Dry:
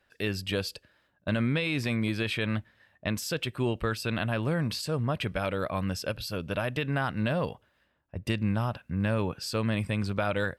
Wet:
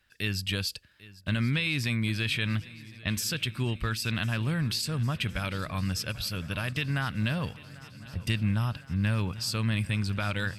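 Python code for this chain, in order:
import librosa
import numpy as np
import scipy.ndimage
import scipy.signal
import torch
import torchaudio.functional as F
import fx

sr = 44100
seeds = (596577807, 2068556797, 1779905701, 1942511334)

y = fx.peak_eq(x, sr, hz=540.0, db=-15.0, octaves=2.3)
y = fx.echo_swing(y, sr, ms=1060, ratio=3, feedback_pct=62, wet_db=-20)
y = y * librosa.db_to_amplitude(5.0)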